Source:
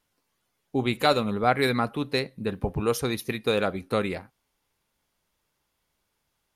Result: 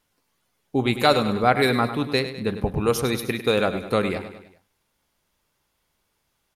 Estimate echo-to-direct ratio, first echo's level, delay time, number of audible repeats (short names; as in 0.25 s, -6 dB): -10.0 dB, -11.5 dB, 0.101 s, 4